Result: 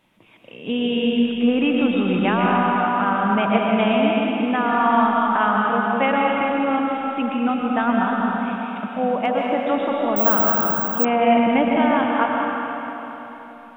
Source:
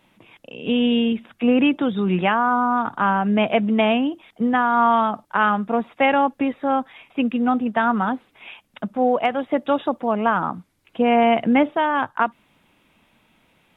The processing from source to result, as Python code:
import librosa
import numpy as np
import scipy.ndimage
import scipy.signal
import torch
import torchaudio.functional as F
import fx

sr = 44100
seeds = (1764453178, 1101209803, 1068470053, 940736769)

y = fx.rev_freeverb(x, sr, rt60_s=3.7, hf_ratio=0.9, predelay_ms=85, drr_db=-2.5)
y = fx.resample_bad(y, sr, factor=2, down='filtered', up='zero_stuff', at=(10.16, 11.05))
y = y * librosa.db_to_amplitude(-3.5)